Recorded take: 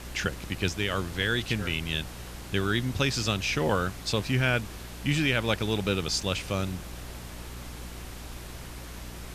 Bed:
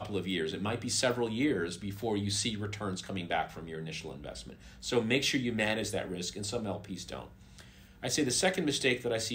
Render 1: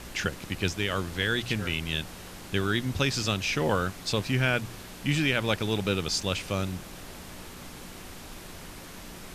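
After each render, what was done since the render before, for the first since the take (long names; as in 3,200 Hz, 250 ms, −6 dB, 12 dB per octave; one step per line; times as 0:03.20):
hum removal 60 Hz, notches 2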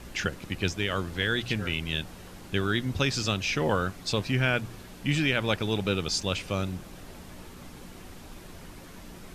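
broadband denoise 6 dB, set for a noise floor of −44 dBFS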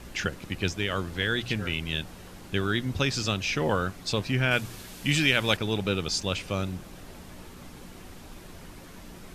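0:04.51–0:05.57: high-shelf EQ 2,500 Hz +9 dB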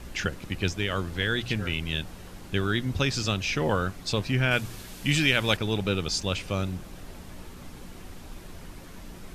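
low-shelf EQ 73 Hz +6 dB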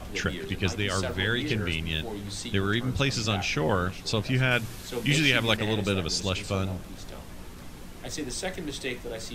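mix in bed −4.5 dB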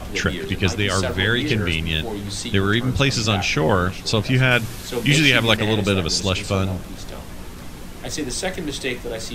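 level +7.5 dB
brickwall limiter −1 dBFS, peak gain reduction 1 dB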